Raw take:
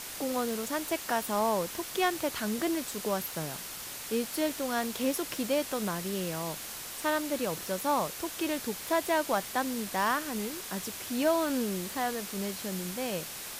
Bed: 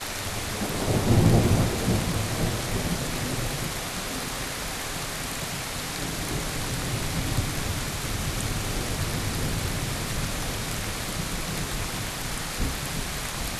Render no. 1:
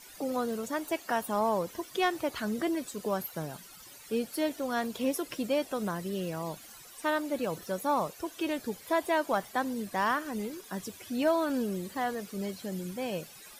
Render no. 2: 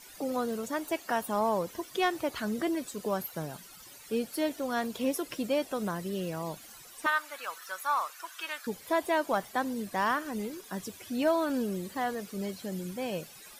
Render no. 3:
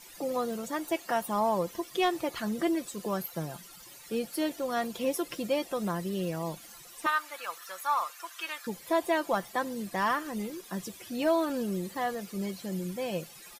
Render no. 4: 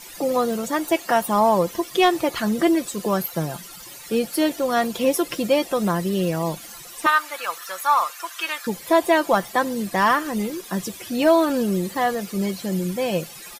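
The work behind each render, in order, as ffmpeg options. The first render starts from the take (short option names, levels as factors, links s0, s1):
-af "afftdn=nr=15:nf=-41"
-filter_complex "[0:a]asettb=1/sr,asplit=3[s0][s1][s2];[s0]atrim=end=7.064[s3];[s1]atrim=start=7.06:end=8.67,asetpts=PTS-STARTPTS,afade=t=in:d=0.004:c=qsin,afade=t=out:st=1.606:d=0.004:c=qsin,highpass=f=1300:t=q:w=2.4[s4];[s2]atrim=start=8.666[s5];[s3][s4]acrossfade=d=0.004:c1=hsin:c2=qsin[s6];[s6][s5]acrossfade=d=0.004:c1=qsin:c2=hsin"
-af "bandreject=f=1500:w=17,aecho=1:1:5.8:0.39"
-af "volume=3.16"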